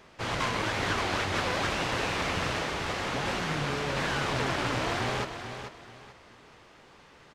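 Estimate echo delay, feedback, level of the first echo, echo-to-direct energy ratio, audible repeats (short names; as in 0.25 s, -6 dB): 0.438 s, 28%, -9.0 dB, -8.5 dB, 3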